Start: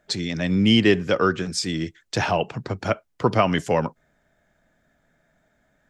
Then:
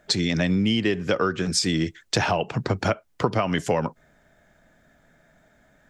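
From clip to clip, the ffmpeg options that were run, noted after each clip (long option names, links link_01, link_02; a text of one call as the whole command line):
ffmpeg -i in.wav -af "acompressor=threshold=-25dB:ratio=12,volume=6.5dB" out.wav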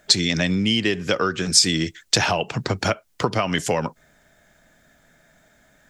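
ffmpeg -i in.wav -af "highshelf=frequency=2500:gain=10" out.wav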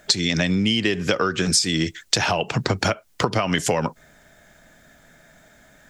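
ffmpeg -i in.wav -af "acompressor=threshold=-22dB:ratio=5,volume=5dB" out.wav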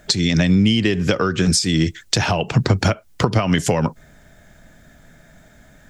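ffmpeg -i in.wav -af "lowshelf=frequency=230:gain=11" out.wav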